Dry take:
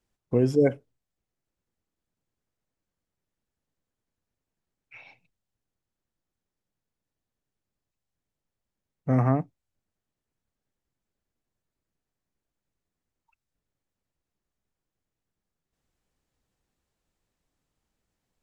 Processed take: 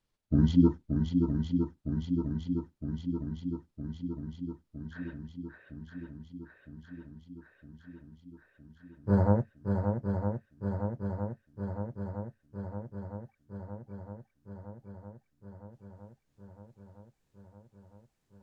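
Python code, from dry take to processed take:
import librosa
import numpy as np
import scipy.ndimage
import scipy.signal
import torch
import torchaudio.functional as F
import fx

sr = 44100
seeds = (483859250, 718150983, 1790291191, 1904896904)

y = fx.pitch_glide(x, sr, semitones=-9.0, runs='ending unshifted')
y = fx.echo_swing(y, sr, ms=961, ratio=1.5, feedback_pct=69, wet_db=-5.5)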